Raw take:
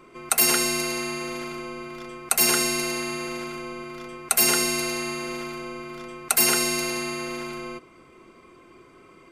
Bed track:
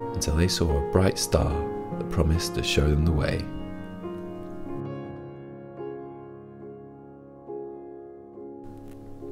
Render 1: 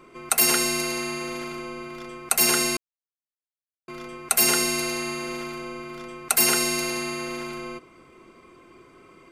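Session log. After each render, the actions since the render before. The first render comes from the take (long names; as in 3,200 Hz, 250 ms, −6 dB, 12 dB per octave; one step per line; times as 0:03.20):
0:02.77–0:03.88: silence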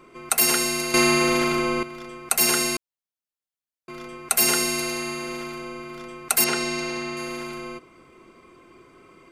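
0:00.94–0:01.83: clip gain +11.5 dB
0:06.44–0:07.17: high-frequency loss of the air 88 metres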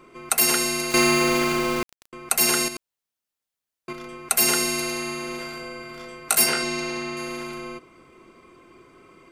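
0:00.91–0:02.13: centre clipping without the shift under −28 dBFS
0:02.68–0:03.93: compressor whose output falls as the input rises −33 dBFS
0:05.37–0:06.63: flutter between parallel walls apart 3.1 metres, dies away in 0.2 s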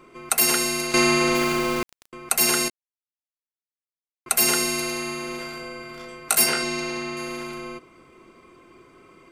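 0:00.87–0:01.35: low-pass filter 9,800 Hz
0:02.70–0:04.26: silence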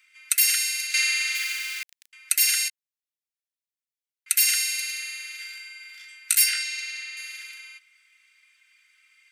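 Butterworth high-pass 1,700 Hz 48 dB per octave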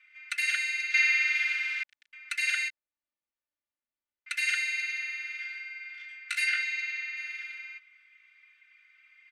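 low-pass filter 2,200 Hz 12 dB per octave
comb filter 3.4 ms, depth 98%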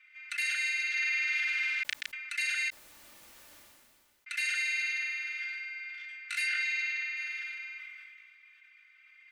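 brickwall limiter −23 dBFS, peak gain reduction 10.5 dB
level that may fall only so fast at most 26 dB per second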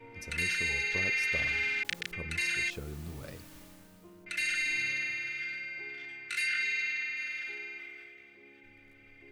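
mix in bed track −19.5 dB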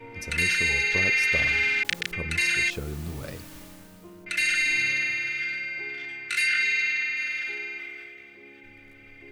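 level +7.5 dB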